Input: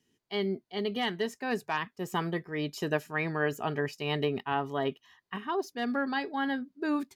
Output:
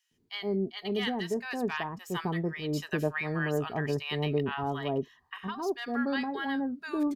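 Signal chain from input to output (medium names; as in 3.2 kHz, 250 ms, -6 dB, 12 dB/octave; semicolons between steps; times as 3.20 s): bass shelf 100 Hz +11.5 dB; bands offset in time highs, lows 110 ms, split 1 kHz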